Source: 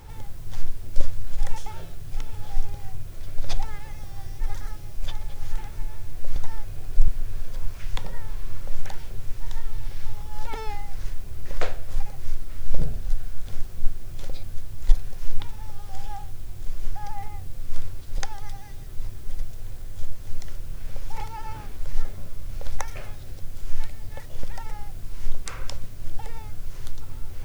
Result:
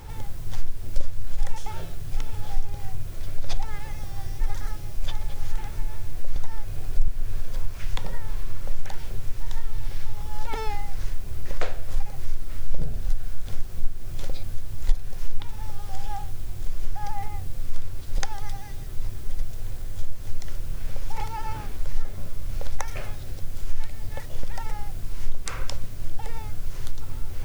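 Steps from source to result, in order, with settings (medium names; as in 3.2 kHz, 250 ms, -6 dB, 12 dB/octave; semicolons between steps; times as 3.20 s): compression 2:1, threshold -19 dBFS, peak gain reduction 8.5 dB; trim +3.5 dB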